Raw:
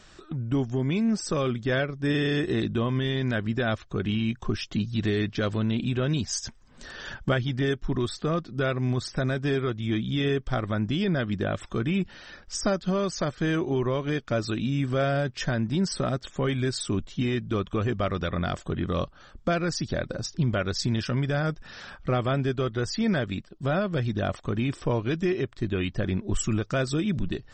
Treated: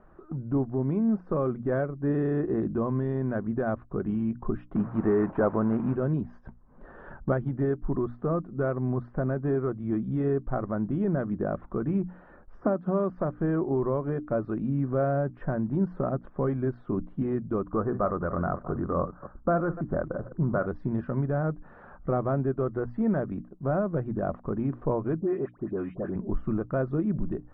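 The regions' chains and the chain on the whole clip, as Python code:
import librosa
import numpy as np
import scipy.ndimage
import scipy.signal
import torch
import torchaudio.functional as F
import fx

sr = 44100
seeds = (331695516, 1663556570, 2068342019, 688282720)

y = fx.chain(x, sr, fx.delta_mod(bps=32000, step_db=-38.5),
    fx.lowpass(hz=4000.0, slope=12),
    fx.peak_eq(hz=1100.0, db=9.0, octaves=2.9), at=(4.75, 5.95))
y = fx.chain(y, sr, fx.highpass(hz=130.0, slope=12),
    fx.band_squash(depth_pct=70), at=(12.61, 13.1))
y = fx.chain(y, sr, fx.reverse_delay(ms=135, wet_db=-12),
    fx.lowpass_res(hz=1400.0, q=1.8), at=(17.65, 20.66))
y = fx.chain(y, sr, fx.highpass(hz=210.0, slope=6),
    fx.dispersion(late='highs', ms=84.0, hz=1700.0), at=(25.2, 26.16))
y = scipy.signal.sosfilt(scipy.signal.butter(4, 1200.0, 'lowpass', fs=sr, output='sos'), y)
y = fx.peak_eq(y, sr, hz=100.0, db=-10.5, octaves=0.32)
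y = fx.hum_notches(y, sr, base_hz=60, count=5)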